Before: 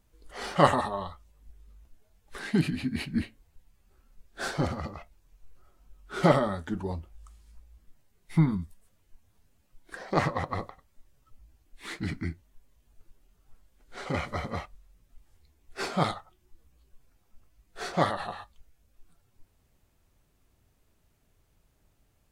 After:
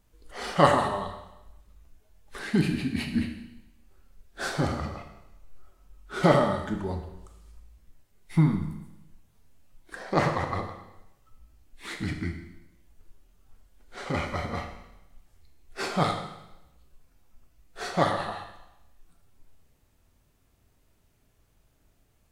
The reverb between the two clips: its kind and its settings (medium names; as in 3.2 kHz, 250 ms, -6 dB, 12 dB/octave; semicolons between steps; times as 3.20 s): Schroeder reverb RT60 0.93 s, combs from 26 ms, DRR 5 dB; trim +1 dB